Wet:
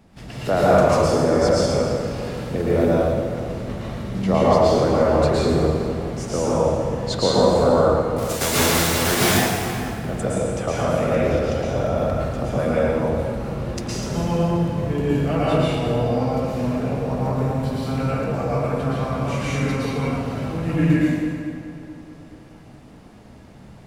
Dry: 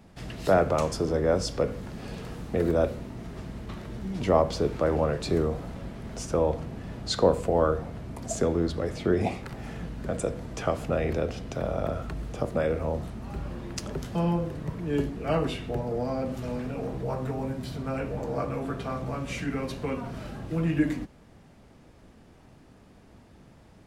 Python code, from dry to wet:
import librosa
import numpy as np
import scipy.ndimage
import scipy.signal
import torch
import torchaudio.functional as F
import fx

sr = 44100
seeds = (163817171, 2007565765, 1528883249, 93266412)

p1 = fx.envelope_flatten(x, sr, power=0.3, at=(8.17, 9.23), fade=0.02)
p2 = p1 + fx.echo_filtered(p1, sr, ms=429, feedback_pct=42, hz=2000.0, wet_db=-12.0, dry=0)
y = fx.rev_plate(p2, sr, seeds[0], rt60_s=1.6, hf_ratio=0.95, predelay_ms=100, drr_db=-7.5)